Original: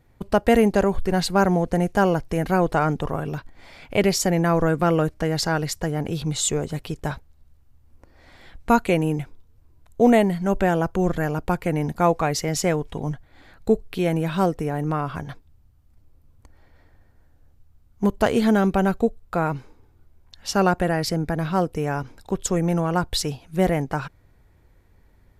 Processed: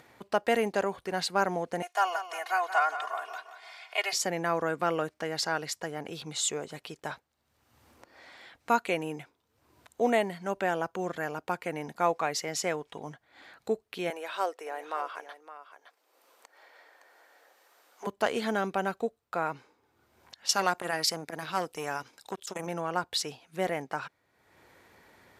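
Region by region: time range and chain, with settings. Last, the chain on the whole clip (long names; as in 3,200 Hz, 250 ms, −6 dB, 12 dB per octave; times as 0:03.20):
0:01.82–0:04.13: high-pass filter 680 Hz 24 dB per octave + comb filter 2.8 ms, depth 95% + repeating echo 175 ms, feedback 45%, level −11 dB
0:14.10–0:18.07: high-pass filter 420 Hz 24 dB per octave + single-tap delay 564 ms −13.5 dB
0:20.49–0:22.67: high-shelf EQ 3,000 Hz +11.5 dB + saturating transformer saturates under 1,300 Hz
whole clip: meter weighting curve A; upward compression, threshold −39 dBFS; level −5.5 dB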